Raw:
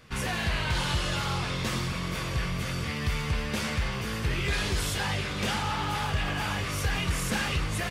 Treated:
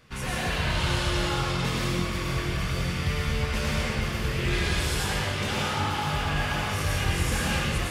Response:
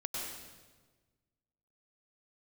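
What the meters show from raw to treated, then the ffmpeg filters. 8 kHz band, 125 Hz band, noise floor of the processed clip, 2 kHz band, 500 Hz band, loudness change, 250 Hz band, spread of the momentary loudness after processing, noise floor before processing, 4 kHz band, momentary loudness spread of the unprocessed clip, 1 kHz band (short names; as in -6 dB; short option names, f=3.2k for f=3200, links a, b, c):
+1.5 dB, +2.5 dB, -30 dBFS, +2.0 dB, +4.0 dB, +2.5 dB, +2.5 dB, 3 LU, -33 dBFS, +2.0 dB, 3 LU, +2.0 dB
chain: -filter_complex "[1:a]atrim=start_sample=2205[a];[0:a][a]afir=irnorm=-1:irlink=0"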